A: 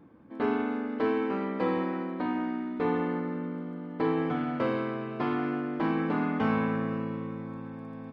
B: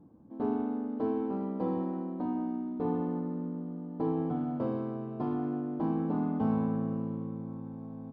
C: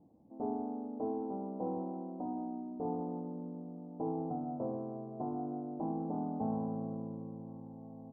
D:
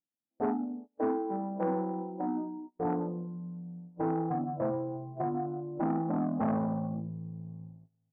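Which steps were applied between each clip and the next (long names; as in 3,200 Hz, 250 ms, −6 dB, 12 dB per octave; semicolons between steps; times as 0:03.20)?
drawn EQ curve 210 Hz 0 dB, 510 Hz −6 dB, 790 Hz −3 dB, 2,100 Hz −25 dB, 3,200 Hz −18 dB, 4,800 Hz −15 dB
transistor ladder low-pass 850 Hz, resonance 55%; level +2 dB
noise reduction from a noise print of the clip's start 21 dB; noise gate −53 dBFS, range −28 dB; saturating transformer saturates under 580 Hz; level +9 dB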